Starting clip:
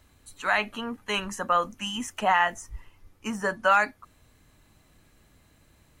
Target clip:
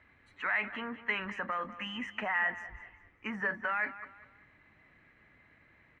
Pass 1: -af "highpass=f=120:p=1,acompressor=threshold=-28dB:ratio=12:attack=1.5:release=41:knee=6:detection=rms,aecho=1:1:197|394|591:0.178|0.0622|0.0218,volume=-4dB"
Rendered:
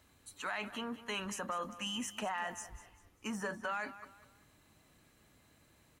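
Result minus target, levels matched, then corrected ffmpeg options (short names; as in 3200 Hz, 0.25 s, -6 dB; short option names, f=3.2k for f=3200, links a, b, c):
2000 Hz band -4.5 dB
-af "highpass=f=120:p=1,acompressor=threshold=-28dB:ratio=12:attack=1.5:release=41:knee=6:detection=rms,lowpass=f=2k:t=q:w=5.1,aecho=1:1:197|394|591:0.178|0.0622|0.0218,volume=-4dB"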